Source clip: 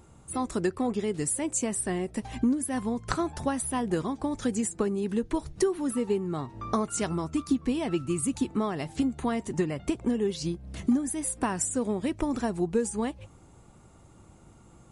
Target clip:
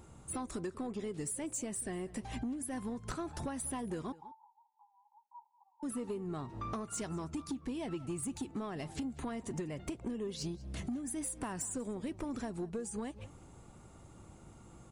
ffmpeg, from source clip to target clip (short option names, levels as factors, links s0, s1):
-filter_complex "[0:a]acompressor=threshold=0.0224:ratio=6,asoftclip=type=tanh:threshold=0.0335,asettb=1/sr,asplit=3[s0][s1][s2];[s0]atrim=end=4.124[s3];[s1]atrim=start=4.12:end=5.83,asetpts=PTS-STARTPTS,afade=t=in:d=0.004:c=qsin,afade=t=out:st=1.706:d=0.004:c=qsin,asuperpass=centerf=890:order=8:qfactor=5.2[s4];[s2]atrim=start=5.826[s5];[s3][s4]acrossfade=d=0.004:c1=hsin:c2=qsin[s6];[s6][s5]acrossfade=d=0.004:c1=qsin:c2=hsin,asplit=2[s7][s8];[s8]adelay=192.4,volume=0.112,highshelf=f=4000:g=-4.33[s9];[s7][s9]amix=inputs=2:normalize=0,volume=0.891"